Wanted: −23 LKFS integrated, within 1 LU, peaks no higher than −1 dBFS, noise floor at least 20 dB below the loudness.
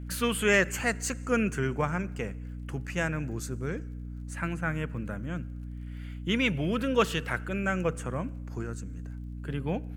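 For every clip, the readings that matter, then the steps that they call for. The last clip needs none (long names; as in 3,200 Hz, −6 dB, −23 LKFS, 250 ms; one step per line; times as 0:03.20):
crackle rate 27 per second; mains hum 60 Hz; hum harmonics up to 300 Hz; level of the hum −36 dBFS; integrated loudness −30.5 LKFS; sample peak −11.5 dBFS; target loudness −23.0 LKFS
→ click removal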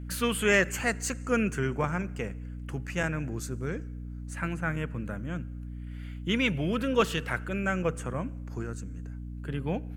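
crackle rate 0.60 per second; mains hum 60 Hz; hum harmonics up to 300 Hz; level of the hum −36 dBFS
→ hum removal 60 Hz, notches 5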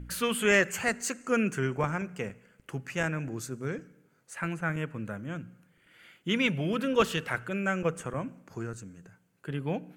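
mains hum none found; integrated loudness −30.5 LKFS; sample peak −10.5 dBFS; target loudness −23.0 LKFS
→ level +7.5 dB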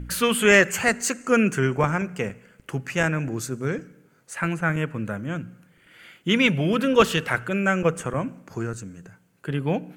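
integrated loudness −23.0 LKFS; sample peak −3.0 dBFS; background noise floor −60 dBFS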